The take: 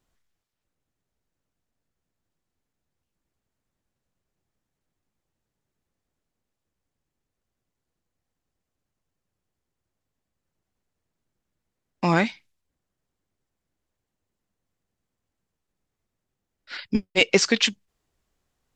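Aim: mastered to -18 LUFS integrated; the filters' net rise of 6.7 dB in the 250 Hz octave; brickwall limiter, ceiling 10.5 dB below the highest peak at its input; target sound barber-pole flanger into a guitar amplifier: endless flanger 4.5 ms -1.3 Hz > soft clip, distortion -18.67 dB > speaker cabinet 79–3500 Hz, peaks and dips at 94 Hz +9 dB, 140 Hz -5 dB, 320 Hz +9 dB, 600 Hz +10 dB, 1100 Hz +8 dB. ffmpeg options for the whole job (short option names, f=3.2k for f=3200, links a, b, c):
-filter_complex "[0:a]equalizer=f=250:t=o:g=5.5,alimiter=limit=-13dB:level=0:latency=1,asplit=2[a][b];[b]adelay=4.5,afreqshift=-1.3[c];[a][c]amix=inputs=2:normalize=1,asoftclip=threshold=-18dB,highpass=79,equalizer=f=94:t=q:w=4:g=9,equalizer=f=140:t=q:w=4:g=-5,equalizer=f=320:t=q:w=4:g=9,equalizer=f=600:t=q:w=4:g=10,equalizer=f=1.1k:t=q:w=4:g=8,lowpass=f=3.5k:w=0.5412,lowpass=f=3.5k:w=1.3066,volume=10dB"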